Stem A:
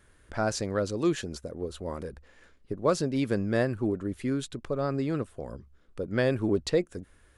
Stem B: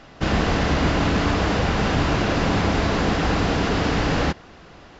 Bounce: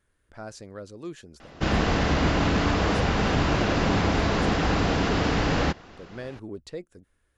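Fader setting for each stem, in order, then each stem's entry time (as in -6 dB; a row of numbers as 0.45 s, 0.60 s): -11.5 dB, -2.5 dB; 0.00 s, 1.40 s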